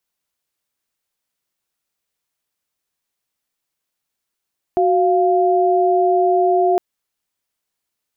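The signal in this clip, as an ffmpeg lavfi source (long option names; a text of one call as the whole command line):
ffmpeg -f lavfi -i "aevalsrc='0.178*(sin(2*PI*369.99*t)+sin(2*PI*698.46*t))':duration=2.01:sample_rate=44100" out.wav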